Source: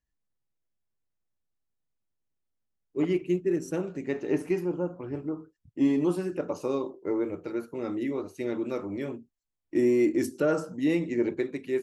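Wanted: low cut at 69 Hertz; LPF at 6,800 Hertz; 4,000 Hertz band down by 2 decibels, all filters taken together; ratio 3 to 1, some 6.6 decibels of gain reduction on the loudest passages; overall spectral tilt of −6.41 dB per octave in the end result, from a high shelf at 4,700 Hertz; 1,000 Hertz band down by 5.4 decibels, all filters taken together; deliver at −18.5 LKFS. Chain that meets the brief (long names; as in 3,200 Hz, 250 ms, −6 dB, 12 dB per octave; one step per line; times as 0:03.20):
high-pass filter 69 Hz
low-pass filter 6,800 Hz
parametric band 1,000 Hz −8 dB
parametric band 4,000 Hz −6.5 dB
high-shelf EQ 4,700 Hz +9 dB
downward compressor 3 to 1, threshold −29 dBFS
level +15.5 dB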